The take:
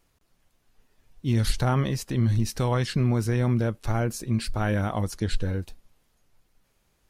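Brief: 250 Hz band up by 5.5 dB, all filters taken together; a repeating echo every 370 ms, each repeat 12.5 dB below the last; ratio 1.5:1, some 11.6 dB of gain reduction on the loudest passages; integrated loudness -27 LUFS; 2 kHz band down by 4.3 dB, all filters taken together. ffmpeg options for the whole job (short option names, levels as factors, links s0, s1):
-af "equalizer=f=250:t=o:g=6.5,equalizer=f=2000:t=o:g=-6,acompressor=threshold=0.00355:ratio=1.5,aecho=1:1:370|740|1110:0.237|0.0569|0.0137,volume=2.37"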